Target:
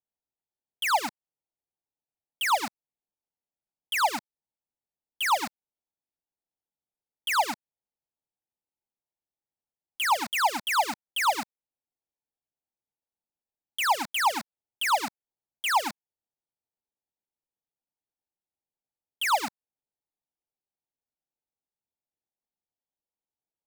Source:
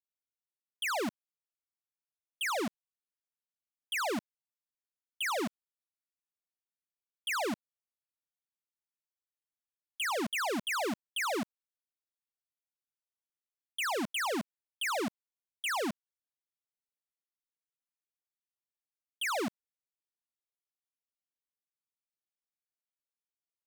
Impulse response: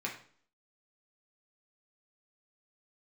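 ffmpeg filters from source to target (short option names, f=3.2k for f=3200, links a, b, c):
-filter_complex "[0:a]equalizer=f=860:w=2.6:g=12,acrossover=split=710[a][b];[a]acompressor=threshold=-44dB:ratio=6[c];[b]aeval=exprs='val(0)*gte(abs(val(0)),0.0168)':c=same[d];[c][d]amix=inputs=2:normalize=0,volume=5.5dB"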